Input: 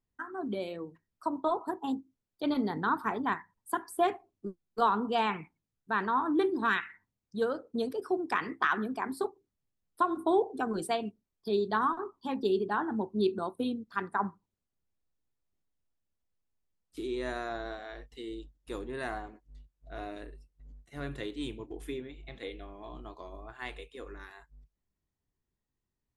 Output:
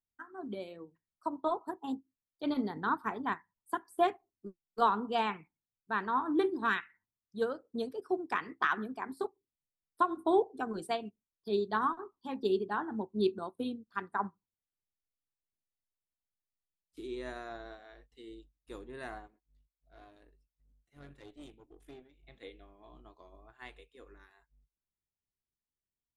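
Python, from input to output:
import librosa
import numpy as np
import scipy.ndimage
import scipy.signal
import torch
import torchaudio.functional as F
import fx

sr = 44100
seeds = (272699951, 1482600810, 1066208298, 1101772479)

y = fx.tube_stage(x, sr, drive_db=35.0, bias=0.75, at=(19.27, 22.23))
y = fx.upward_expand(y, sr, threshold_db=-50.0, expansion=1.5)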